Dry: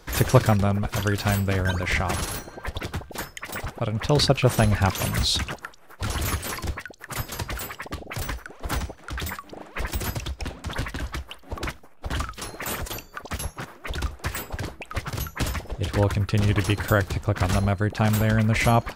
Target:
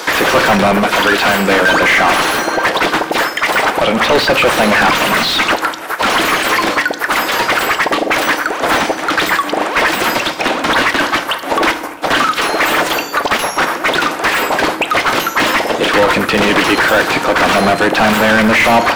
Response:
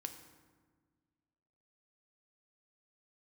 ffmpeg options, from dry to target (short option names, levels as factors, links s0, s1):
-filter_complex "[0:a]highpass=f=200:w=0.5412,highpass=f=200:w=1.3066,asplit=2[s0][s1];[s1]highpass=f=720:p=1,volume=70.8,asoftclip=type=tanh:threshold=0.708[s2];[s0][s2]amix=inputs=2:normalize=0,lowpass=f=4900:p=1,volume=0.501,acrossover=split=3700[s3][s4];[s4]acompressor=threshold=0.0316:ratio=4:attack=1:release=60[s5];[s3][s5]amix=inputs=2:normalize=0,asplit=2[s6][s7];[1:a]atrim=start_sample=2205,afade=t=out:st=0.36:d=0.01,atrim=end_sample=16317,highshelf=f=7200:g=8.5[s8];[s7][s8]afir=irnorm=-1:irlink=0,volume=2.11[s9];[s6][s9]amix=inputs=2:normalize=0,volume=0.447"